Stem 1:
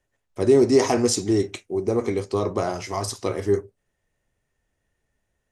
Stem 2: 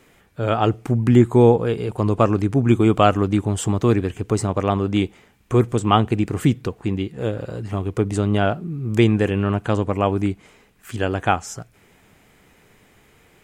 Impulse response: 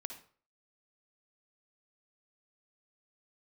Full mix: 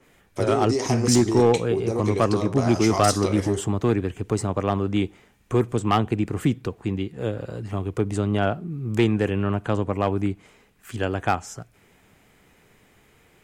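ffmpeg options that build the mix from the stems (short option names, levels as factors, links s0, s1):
-filter_complex "[0:a]acompressor=threshold=0.0398:ratio=4,equalizer=f=6300:w=0.37:g=5.5,volume=1.12,asplit=2[s0][s1];[s1]volume=0.596[s2];[1:a]acrossover=split=190[s3][s4];[s3]acompressor=threshold=0.1:ratio=6[s5];[s5][s4]amix=inputs=2:normalize=0,adynamicequalizer=threshold=0.0126:dfrequency=2900:dqfactor=0.7:tfrequency=2900:tqfactor=0.7:attack=5:release=100:ratio=0.375:range=1.5:mode=cutabove:tftype=highshelf,volume=0.668,asplit=2[s6][s7];[s7]volume=0.075[s8];[2:a]atrim=start_sample=2205[s9];[s2][s8]amix=inputs=2:normalize=0[s10];[s10][s9]afir=irnorm=-1:irlink=0[s11];[s0][s6][s11]amix=inputs=3:normalize=0,asoftclip=type=hard:threshold=0.282"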